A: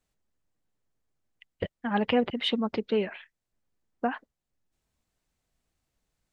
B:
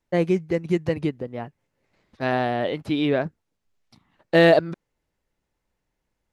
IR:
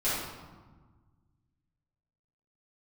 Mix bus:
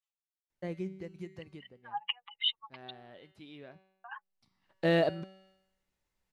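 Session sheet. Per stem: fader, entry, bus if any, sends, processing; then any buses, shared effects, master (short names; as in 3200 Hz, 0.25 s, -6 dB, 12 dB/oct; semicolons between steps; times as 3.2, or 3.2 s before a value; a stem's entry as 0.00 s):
+0.5 dB, 0.00 s, muted 2.91–4.04, no send, spectral contrast raised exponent 2.1; rippled Chebyshev high-pass 810 Hz, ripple 9 dB
-3.0 dB, 0.50 s, no send, resonator 190 Hz, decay 0.8 s, harmonics all, mix 70%; auto duck -19 dB, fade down 1.95 s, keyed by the first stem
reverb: off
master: low shelf 230 Hz +6.5 dB; mismatched tape noise reduction encoder only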